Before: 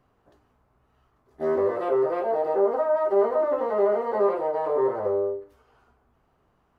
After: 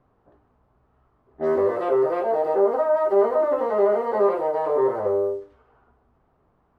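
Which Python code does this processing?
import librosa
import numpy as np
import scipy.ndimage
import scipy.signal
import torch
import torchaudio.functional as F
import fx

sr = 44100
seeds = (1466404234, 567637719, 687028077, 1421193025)

y = fx.quant_dither(x, sr, seeds[0], bits=12, dither='triangular')
y = fx.env_lowpass(y, sr, base_hz=1300.0, full_db=-21.5)
y = y * librosa.db_to_amplitude(2.5)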